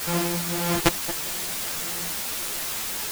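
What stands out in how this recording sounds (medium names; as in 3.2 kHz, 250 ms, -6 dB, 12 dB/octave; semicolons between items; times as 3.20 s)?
a buzz of ramps at a fixed pitch in blocks of 256 samples; tremolo triangle 1.7 Hz, depth 85%; a quantiser's noise floor 6-bit, dither triangular; a shimmering, thickened sound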